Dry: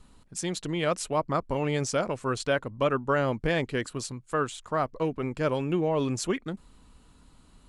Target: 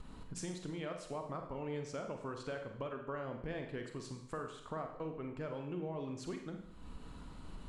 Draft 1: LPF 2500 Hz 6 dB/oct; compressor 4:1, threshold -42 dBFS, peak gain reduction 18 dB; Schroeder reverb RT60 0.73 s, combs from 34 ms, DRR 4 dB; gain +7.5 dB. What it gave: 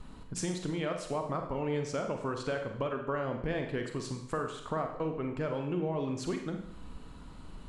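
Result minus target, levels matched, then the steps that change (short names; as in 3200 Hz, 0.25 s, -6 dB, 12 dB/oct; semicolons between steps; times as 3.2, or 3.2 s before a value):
compressor: peak gain reduction -8 dB
change: compressor 4:1, threshold -53 dBFS, peak gain reduction 26 dB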